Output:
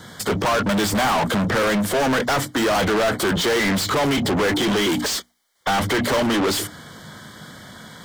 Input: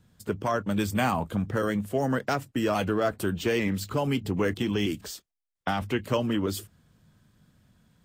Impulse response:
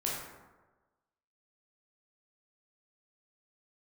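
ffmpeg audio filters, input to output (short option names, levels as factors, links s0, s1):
-filter_complex "[0:a]asuperstop=centerf=2600:order=20:qfactor=4.2,bandreject=f=60:t=h:w=6,bandreject=f=120:t=h:w=6,bandreject=f=180:t=h:w=6,bandreject=f=240:t=h:w=6,bandreject=f=300:t=h:w=6,asplit=2[s0][s1];[s1]highpass=f=720:p=1,volume=79.4,asoftclip=type=tanh:threshold=0.224[s2];[s0][s2]amix=inputs=2:normalize=0,lowpass=f=4800:p=1,volume=0.501"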